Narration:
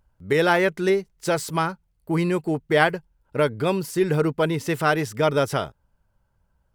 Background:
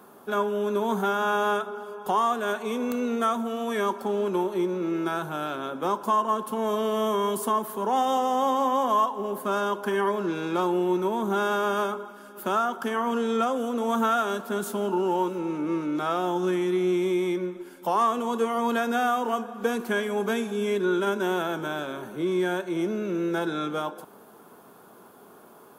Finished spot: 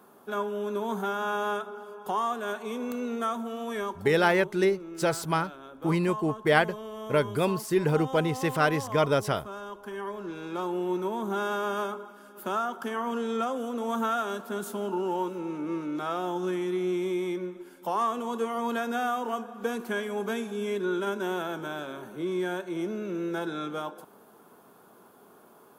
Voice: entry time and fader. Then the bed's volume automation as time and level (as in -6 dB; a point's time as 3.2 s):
3.75 s, -3.5 dB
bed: 3.77 s -5 dB
4.14 s -13.5 dB
9.66 s -13.5 dB
10.95 s -4.5 dB